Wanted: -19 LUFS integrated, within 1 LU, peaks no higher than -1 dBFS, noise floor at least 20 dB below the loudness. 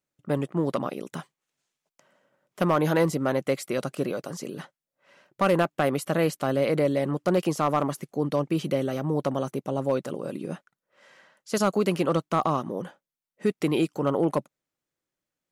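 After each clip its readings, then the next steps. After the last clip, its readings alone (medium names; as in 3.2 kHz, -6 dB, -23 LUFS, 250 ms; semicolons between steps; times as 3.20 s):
clipped samples 0.3%; clipping level -14.5 dBFS; loudness -26.5 LUFS; peak level -14.5 dBFS; loudness target -19.0 LUFS
-> clip repair -14.5 dBFS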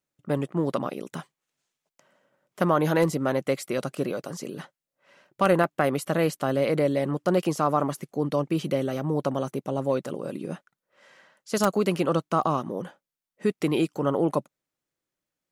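clipped samples 0.0%; loudness -26.5 LUFS; peak level -5.5 dBFS; loudness target -19.0 LUFS
-> trim +7.5 dB; peak limiter -1 dBFS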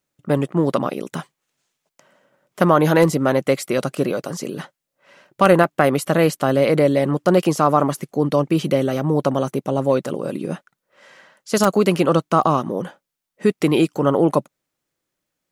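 loudness -19.0 LUFS; peak level -1.0 dBFS; noise floor -81 dBFS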